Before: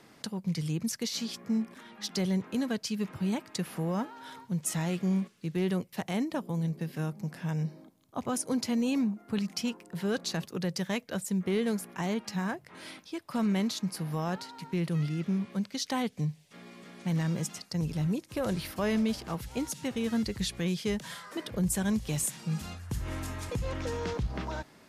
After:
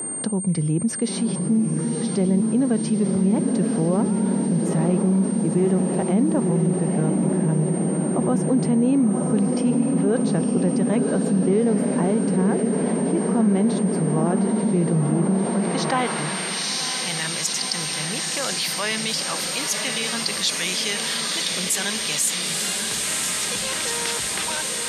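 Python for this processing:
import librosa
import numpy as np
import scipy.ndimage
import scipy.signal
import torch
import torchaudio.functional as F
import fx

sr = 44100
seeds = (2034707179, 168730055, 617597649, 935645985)

y = fx.echo_diffused(x, sr, ms=973, feedback_pct=75, wet_db=-5.0)
y = fx.filter_sweep_bandpass(y, sr, from_hz=330.0, to_hz=4500.0, start_s=15.26, end_s=16.76, q=0.72)
y = y + 10.0 ** (-49.0 / 20.0) * np.sin(2.0 * np.pi * 8700.0 * np.arange(len(y)) / sr)
y = fx.env_flatten(y, sr, amount_pct=50)
y = F.gain(torch.from_numpy(y), 8.5).numpy()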